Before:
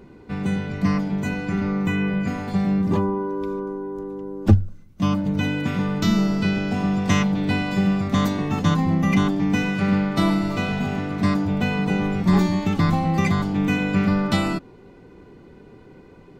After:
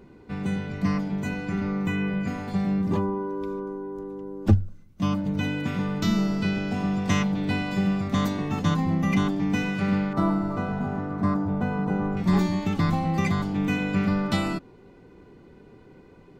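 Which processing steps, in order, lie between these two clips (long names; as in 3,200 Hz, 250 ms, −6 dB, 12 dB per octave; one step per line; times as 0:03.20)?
0:10.13–0:12.17: high shelf with overshoot 1,800 Hz −12 dB, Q 1.5
level −4 dB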